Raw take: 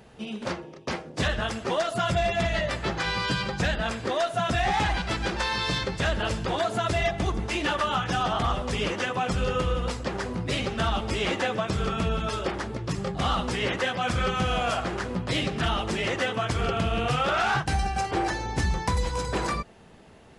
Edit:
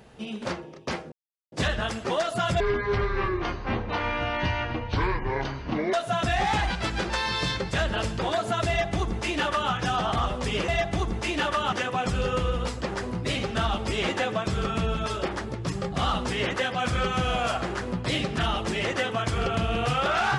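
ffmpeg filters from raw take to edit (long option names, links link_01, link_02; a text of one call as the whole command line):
ffmpeg -i in.wav -filter_complex "[0:a]asplit=6[link_01][link_02][link_03][link_04][link_05][link_06];[link_01]atrim=end=1.12,asetpts=PTS-STARTPTS,afade=type=out:start_time=1.116:duration=0.004:curve=hsin,apad=pad_dur=0.4[link_07];[link_02]atrim=start=1.12:end=2.204,asetpts=PTS-STARTPTS,afade=type=in:duration=0.004:curve=hsin[link_08];[link_03]atrim=start=2.2:end=4.2,asetpts=PTS-STARTPTS,asetrate=26460,aresample=44100[link_09];[link_04]atrim=start=4.196:end=8.952[link_10];[link_05]atrim=start=6.948:end=7.992[link_11];[link_06]atrim=start=8.948[link_12];[link_07][link_08]concat=n=2:v=0:a=1[link_13];[link_13][link_09]acrossfade=duration=0.004:curve1=hsin:curve2=hsin[link_14];[link_14][link_10]acrossfade=duration=0.004:curve1=hsin:curve2=hsin[link_15];[link_15][link_11]acrossfade=duration=0.004:curve1=hsin:curve2=hsin[link_16];[link_16][link_12]acrossfade=duration=0.004:curve1=hsin:curve2=hsin" out.wav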